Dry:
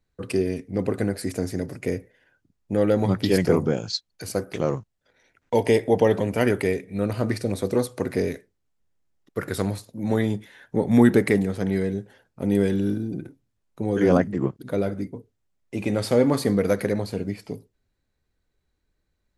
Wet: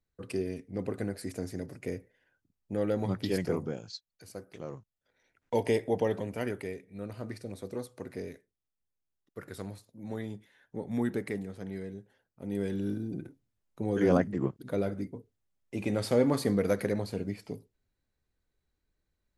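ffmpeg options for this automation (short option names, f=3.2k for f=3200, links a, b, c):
-af "volume=9dB,afade=t=out:st=3.23:d=0.88:silence=0.421697,afade=t=in:st=4.68:d=0.86:silence=0.334965,afade=t=out:st=5.54:d=1.15:silence=0.421697,afade=t=in:st=12.42:d=0.76:silence=0.354813"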